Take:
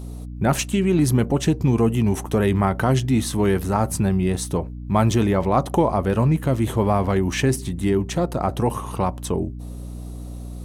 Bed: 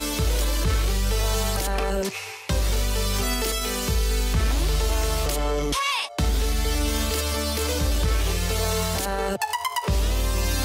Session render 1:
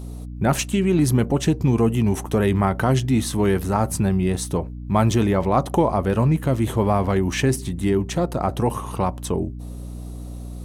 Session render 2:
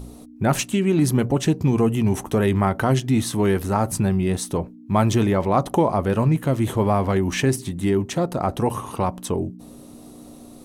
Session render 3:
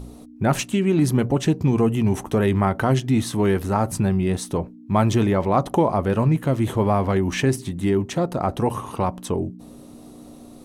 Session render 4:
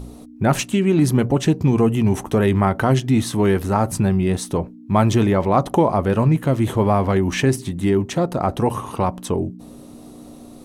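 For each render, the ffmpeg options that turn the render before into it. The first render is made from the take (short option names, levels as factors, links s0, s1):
-af anull
-af "bandreject=f=60:t=h:w=4,bandreject=f=120:t=h:w=4,bandreject=f=180:t=h:w=4"
-af "highshelf=f=6200:g=-5"
-af "volume=1.33"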